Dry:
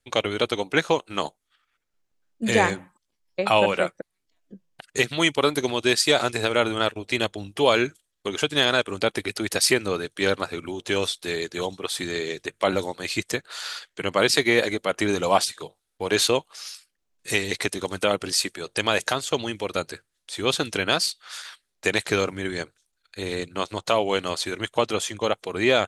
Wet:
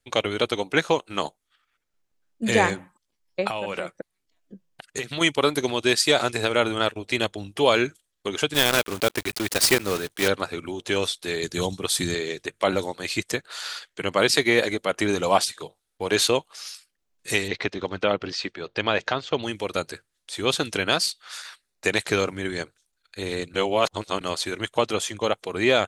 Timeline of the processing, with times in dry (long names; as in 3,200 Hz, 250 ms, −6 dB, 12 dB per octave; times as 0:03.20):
0:03.47–0:05.21: downward compressor 12 to 1, threshold −24 dBFS
0:08.54–0:10.30: one scale factor per block 3 bits
0:11.43–0:12.15: bass and treble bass +10 dB, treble +8 dB
0:17.48–0:19.43: Bessel low-pass filter 3,400 Hz, order 6
0:21.34–0:21.92: notch filter 3,200 Hz
0:23.54–0:24.21: reverse